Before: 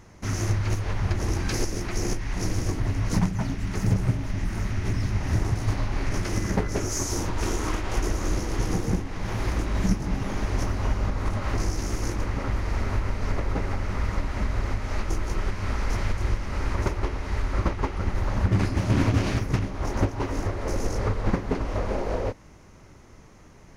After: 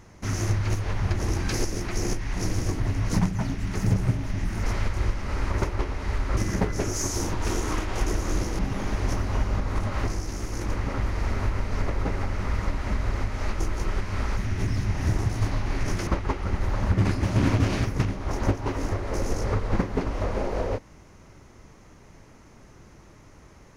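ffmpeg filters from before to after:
-filter_complex "[0:a]asplit=8[a][b][c][d][e][f][g][h];[a]atrim=end=4.632[i];[b]atrim=start=15.868:end=17.612[j];[c]atrim=start=6.328:end=8.552[k];[d]atrim=start=10.088:end=11.582[l];[e]atrim=start=11.578:end=12.112,asetpts=PTS-STARTPTS,volume=-3.5dB[m];[f]atrim=start=12.108:end=15.872[n];[g]atrim=start=4.628:end=6.332[o];[h]atrim=start=17.608[p];[i][j]acrossfade=d=0.004:c1=hsin:c2=hsin[q];[q][k]acrossfade=d=0.004:c1=hsin:c2=hsin[r];[r][l]acrossfade=d=0.004:c1=hsin:c2=hsin[s];[s][m]acrossfade=d=0.004:c1=hsin:c2=hsin[t];[t][n]acrossfade=d=0.004:c1=hsin:c2=hsin[u];[u][o]acrossfade=d=0.004:c1=hsin:c2=hsin[v];[v][p]acrossfade=d=0.004:c1=hsin:c2=hsin"

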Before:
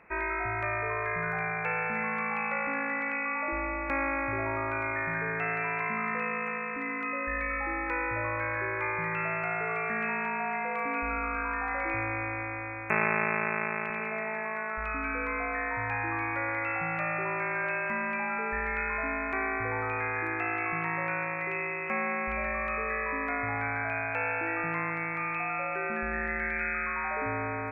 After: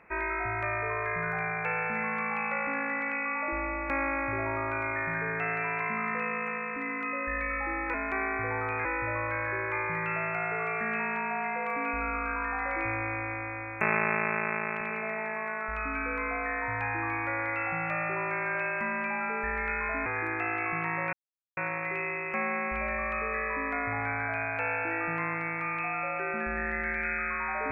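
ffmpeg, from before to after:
-filter_complex "[0:a]asplit=5[a][b][c][d][e];[a]atrim=end=7.942[f];[b]atrim=start=19.148:end=20.062[g];[c]atrim=start=7.938:end=19.152[h];[d]atrim=start=20.058:end=21.13,asetpts=PTS-STARTPTS,afade=t=out:st=1.068:d=0.004:c=hsin,apad=pad_dur=0.44[i];[e]atrim=start=21.13,asetpts=PTS-STARTPTS,afade=t=in:d=0.004:c=hsin[j];[f][g]acrossfade=d=0.004:c1=hsin:c2=hsin[k];[k][h]acrossfade=d=0.004:c1=hsin:c2=hsin[l];[i][j]concat=n=2:v=0:a=1[m];[l][m]acrossfade=d=0.004:c1=hsin:c2=hsin"

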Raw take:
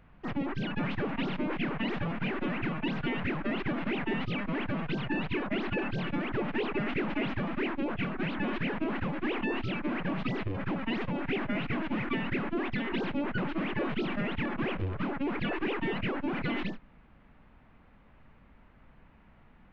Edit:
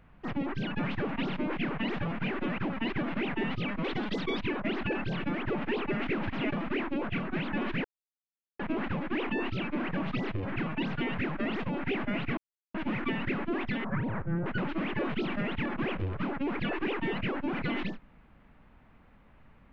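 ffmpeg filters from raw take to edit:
-filter_complex "[0:a]asplit=13[a][b][c][d][e][f][g][h][i][j][k][l][m];[a]atrim=end=2.582[n];[b]atrim=start=10.638:end=10.952[o];[c]atrim=start=3.588:end=4.544[p];[d]atrim=start=4.54:end=5.28,asetpts=PTS-STARTPTS,asetrate=56889,aresample=44100[q];[e]atrim=start=5.276:end=7.142[r];[f]atrim=start=7.138:end=7.392,asetpts=PTS-STARTPTS,areverse[s];[g]atrim=start=7.388:end=8.71,asetpts=PTS-STARTPTS,afade=t=out:st=1.318:d=0.004:c=hsin,apad=pad_dur=0.75[t];[h]atrim=start=8.71:end=10.642,asetpts=PTS-STARTPTS,afade=t=in:d=0.004:c=hsin[u];[i]atrim=start=2.578:end=3.592[v];[j]atrim=start=10.948:end=11.79,asetpts=PTS-STARTPTS,afade=t=out:st=0.838:d=0.004:c=hsin,apad=pad_dur=0.37[w];[k]atrim=start=11.79:end=12.894,asetpts=PTS-STARTPTS,afade=t=in:d=0.004:c=hsin[x];[l]atrim=start=12.89:end=13.26,asetpts=PTS-STARTPTS,asetrate=26460,aresample=44100[y];[m]atrim=start=13.256[z];[n][o]acrossfade=d=0.004:c1=hsin:c2=hsin[aa];[aa][p]acrossfade=d=0.004:c1=hsin:c2=hsin[ab];[ab][q]acrossfade=d=0.004:c1=hsin:c2=hsin[ac];[ac][r]acrossfade=d=0.004:c1=hsin:c2=hsin[ad];[ad][s]acrossfade=d=0.004:c1=hsin:c2=hsin[ae];[t][u]concat=n=2:v=0:a=1[af];[ae][af]acrossfade=d=0.004:c1=hsin:c2=hsin[ag];[ag][v]acrossfade=d=0.004:c1=hsin:c2=hsin[ah];[w][x]concat=n=2:v=0:a=1[ai];[ah][ai]acrossfade=d=0.004:c1=hsin:c2=hsin[aj];[aj][y]acrossfade=d=0.004:c1=hsin:c2=hsin[ak];[ak][z]acrossfade=d=0.004:c1=hsin:c2=hsin"

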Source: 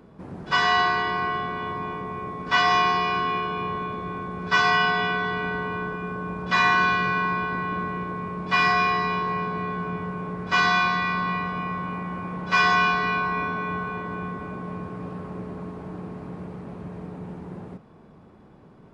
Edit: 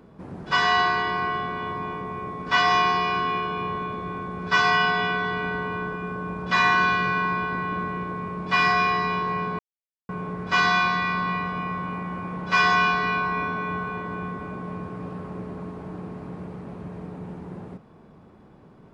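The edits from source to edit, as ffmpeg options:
-filter_complex "[0:a]asplit=3[a][b][c];[a]atrim=end=9.59,asetpts=PTS-STARTPTS,afade=t=out:st=9.586:d=0.004:c=hsin[d];[b]atrim=start=9.59:end=10.09,asetpts=PTS-STARTPTS,volume=0[e];[c]atrim=start=10.09,asetpts=PTS-STARTPTS,afade=t=in:d=0.004:c=hsin[f];[d][e][f]concat=n=3:v=0:a=1"

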